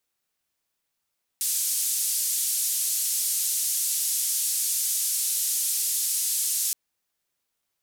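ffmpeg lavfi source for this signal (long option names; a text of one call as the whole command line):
ffmpeg -f lavfi -i "anoisesrc=color=white:duration=5.32:sample_rate=44100:seed=1,highpass=frequency=6500,lowpass=frequency=12000,volume=-15.1dB" out.wav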